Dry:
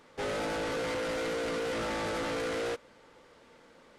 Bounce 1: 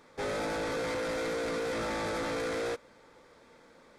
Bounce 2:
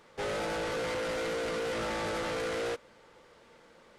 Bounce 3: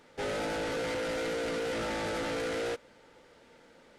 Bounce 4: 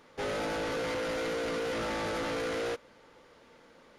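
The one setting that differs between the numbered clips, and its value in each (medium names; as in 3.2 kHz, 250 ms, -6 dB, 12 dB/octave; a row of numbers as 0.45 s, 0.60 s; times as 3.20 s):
band-stop, frequency: 2.9 kHz, 270 Hz, 1.1 kHz, 8 kHz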